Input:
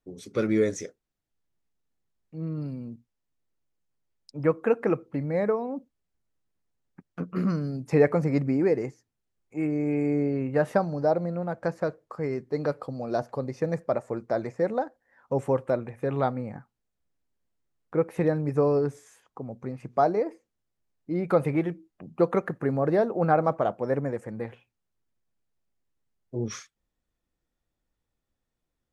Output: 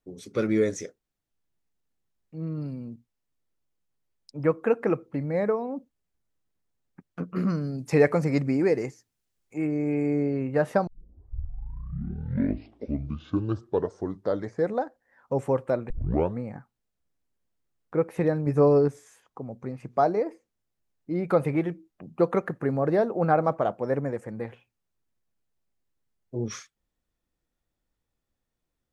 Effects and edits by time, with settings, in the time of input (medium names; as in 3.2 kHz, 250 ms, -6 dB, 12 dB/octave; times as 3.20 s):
7.78–9.58 s: treble shelf 2.2 kHz +8 dB
10.87 s: tape start 3.97 s
15.90 s: tape start 0.50 s
18.45–18.88 s: doubling 14 ms -4 dB